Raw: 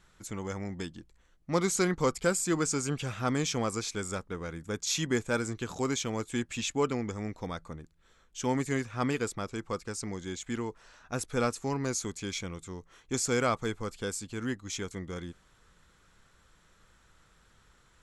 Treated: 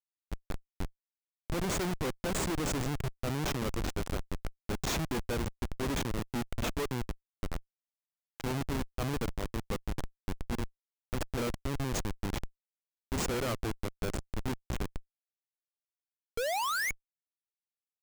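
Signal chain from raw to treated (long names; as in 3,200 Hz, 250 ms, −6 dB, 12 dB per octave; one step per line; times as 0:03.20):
sound drawn into the spectrogram rise, 0:16.37–0:16.91, 440–2,300 Hz −20 dBFS
comparator with hysteresis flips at −28.5 dBFS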